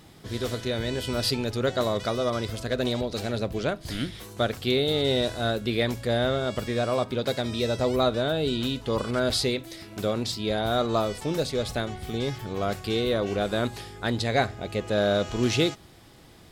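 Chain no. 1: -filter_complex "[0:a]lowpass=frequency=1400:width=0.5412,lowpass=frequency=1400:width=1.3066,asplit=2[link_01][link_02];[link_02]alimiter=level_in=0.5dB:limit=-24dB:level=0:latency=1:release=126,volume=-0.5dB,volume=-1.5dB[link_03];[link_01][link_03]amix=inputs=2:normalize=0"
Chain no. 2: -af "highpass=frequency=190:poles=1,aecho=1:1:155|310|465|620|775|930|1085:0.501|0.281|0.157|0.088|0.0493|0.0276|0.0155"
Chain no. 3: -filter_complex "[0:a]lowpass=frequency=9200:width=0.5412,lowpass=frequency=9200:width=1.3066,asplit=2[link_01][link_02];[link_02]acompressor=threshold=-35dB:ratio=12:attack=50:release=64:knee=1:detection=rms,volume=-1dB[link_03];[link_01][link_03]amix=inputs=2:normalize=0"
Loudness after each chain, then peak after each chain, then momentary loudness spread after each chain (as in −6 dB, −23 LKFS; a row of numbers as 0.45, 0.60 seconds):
−25.0, −26.5, −24.5 LKFS; −11.0, −9.0, −9.0 dBFS; 6, 7, 6 LU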